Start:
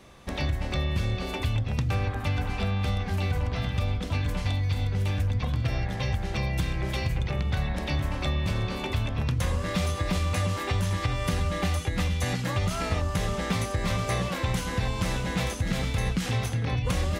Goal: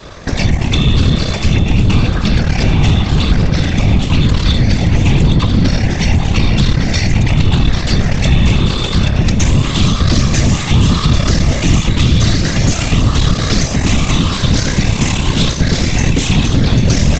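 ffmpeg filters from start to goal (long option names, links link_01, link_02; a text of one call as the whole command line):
ffmpeg -i in.wav -filter_complex "[0:a]afftfilt=real='re*pow(10,8/40*sin(2*PI*(0.61*log(max(b,1)*sr/1024/100)/log(2)-(0.9)*(pts-256)/sr)))':imag='im*pow(10,8/40*sin(2*PI*(0.61*log(max(b,1)*sr/1024/100)/log(2)-(0.9)*(pts-256)/sr)))':win_size=1024:overlap=0.75,adynamicequalizer=threshold=0.01:dfrequency=290:dqfactor=1:tfrequency=290:tqfactor=1:attack=5:release=100:ratio=0.375:range=2:mode=cutabove:tftype=bell,acrossover=split=230|3000[link_01][link_02][link_03];[link_02]acompressor=threshold=-44dB:ratio=4[link_04];[link_01][link_04][link_03]amix=inputs=3:normalize=0,aresample=16000,aeval=exprs='max(val(0),0)':channel_layout=same,aresample=44100,afftfilt=real='hypot(re,im)*cos(2*PI*random(0))':imag='hypot(re,im)*sin(2*PI*random(1))':win_size=512:overlap=0.75,apsyclip=32dB,asplit=2[link_05][link_06];[link_06]aecho=0:1:791:0.299[link_07];[link_05][link_07]amix=inputs=2:normalize=0,volume=-4dB" out.wav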